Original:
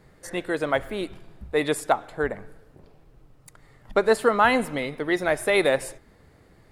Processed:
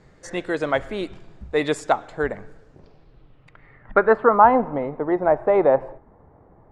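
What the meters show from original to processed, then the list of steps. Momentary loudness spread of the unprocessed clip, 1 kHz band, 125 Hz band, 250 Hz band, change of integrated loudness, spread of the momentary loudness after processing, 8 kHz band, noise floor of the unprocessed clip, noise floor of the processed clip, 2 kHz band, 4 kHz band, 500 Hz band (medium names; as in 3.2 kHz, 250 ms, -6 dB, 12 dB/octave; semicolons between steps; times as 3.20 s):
13 LU, +6.5 dB, +2.0 dB, +2.5 dB, +3.5 dB, 16 LU, no reading, -56 dBFS, -53 dBFS, -2.0 dB, -5.0 dB, +4.0 dB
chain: treble shelf 5 kHz -10.5 dB; low-pass sweep 6.9 kHz -> 910 Hz, 2.70–4.46 s; trim +2 dB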